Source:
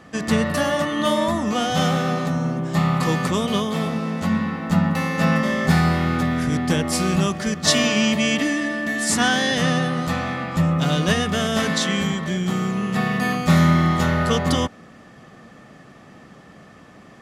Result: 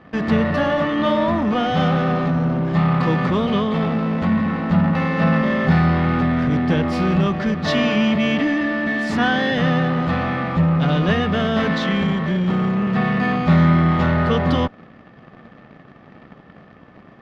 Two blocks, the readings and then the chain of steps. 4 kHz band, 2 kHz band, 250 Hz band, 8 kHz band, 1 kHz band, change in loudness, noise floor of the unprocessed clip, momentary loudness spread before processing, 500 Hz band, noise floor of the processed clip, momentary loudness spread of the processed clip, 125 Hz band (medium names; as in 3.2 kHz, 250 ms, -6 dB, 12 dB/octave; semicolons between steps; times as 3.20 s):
-4.5 dB, +0.5 dB, +3.0 dB, under -15 dB, +2.0 dB, +2.0 dB, -46 dBFS, 5 LU, +2.5 dB, -46 dBFS, 4 LU, +2.5 dB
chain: in parallel at -12 dB: fuzz box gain 33 dB, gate -40 dBFS; on the sum: distance through air 320 m